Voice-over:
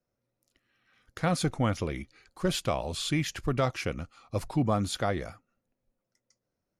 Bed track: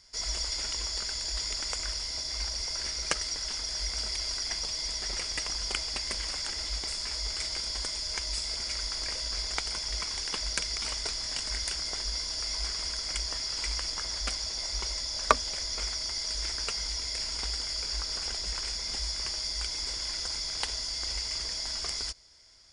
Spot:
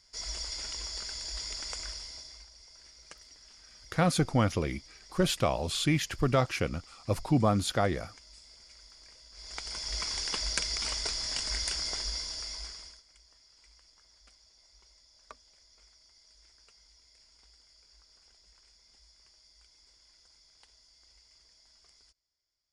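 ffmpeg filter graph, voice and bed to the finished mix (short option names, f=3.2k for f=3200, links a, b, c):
-filter_complex "[0:a]adelay=2750,volume=1.5dB[a];[1:a]volume=16dB,afade=t=out:st=1.8:d=0.66:silence=0.158489,afade=t=in:st=9.33:d=0.75:silence=0.0891251,afade=t=out:st=11.87:d=1.16:silence=0.0398107[b];[a][b]amix=inputs=2:normalize=0"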